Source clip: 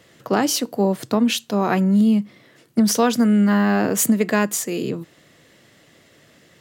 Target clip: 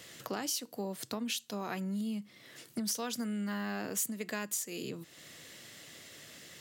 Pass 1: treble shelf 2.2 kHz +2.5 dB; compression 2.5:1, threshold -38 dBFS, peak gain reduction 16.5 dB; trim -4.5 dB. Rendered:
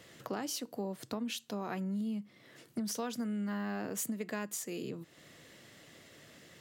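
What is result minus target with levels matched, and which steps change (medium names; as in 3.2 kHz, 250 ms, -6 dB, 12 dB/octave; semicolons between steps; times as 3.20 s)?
4 kHz band -3.0 dB
change: treble shelf 2.2 kHz +12.5 dB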